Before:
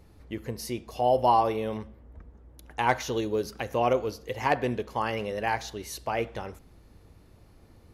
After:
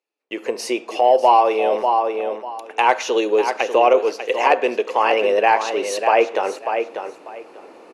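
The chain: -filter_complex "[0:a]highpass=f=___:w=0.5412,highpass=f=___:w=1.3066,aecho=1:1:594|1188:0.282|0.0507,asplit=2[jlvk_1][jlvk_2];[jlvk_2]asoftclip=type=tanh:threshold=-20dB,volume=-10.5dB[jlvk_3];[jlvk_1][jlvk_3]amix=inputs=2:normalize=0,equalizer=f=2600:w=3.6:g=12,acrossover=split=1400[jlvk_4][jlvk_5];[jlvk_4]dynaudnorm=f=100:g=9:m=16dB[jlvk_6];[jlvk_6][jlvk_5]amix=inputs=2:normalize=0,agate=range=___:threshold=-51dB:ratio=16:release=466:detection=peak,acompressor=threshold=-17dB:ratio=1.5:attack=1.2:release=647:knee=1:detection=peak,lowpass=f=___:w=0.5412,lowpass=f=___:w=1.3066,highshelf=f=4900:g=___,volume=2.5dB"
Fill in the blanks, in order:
370, 370, -30dB, 9100, 9100, 8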